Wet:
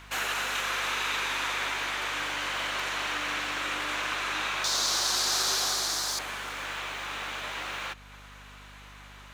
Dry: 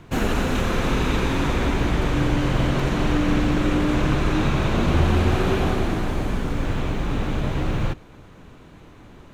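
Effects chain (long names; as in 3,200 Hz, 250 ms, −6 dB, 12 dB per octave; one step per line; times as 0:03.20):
high-pass filter 1,300 Hz 12 dB per octave
in parallel at +1.5 dB: downward compressor, threshold −47 dBFS, peak gain reduction 17.5 dB
0:04.64–0:06.19: on the sum: high shelf with overshoot 3,600 Hz +11 dB, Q 3
mains hum 50 Hz, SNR 20 dB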